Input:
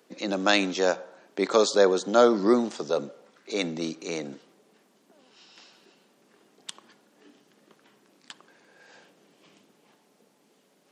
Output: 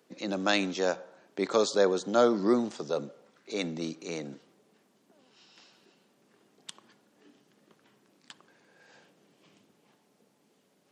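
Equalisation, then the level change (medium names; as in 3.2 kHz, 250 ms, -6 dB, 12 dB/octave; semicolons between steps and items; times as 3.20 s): peaking EQ 86 Hz +12.5 dB 1.3 oct; -5.0 dB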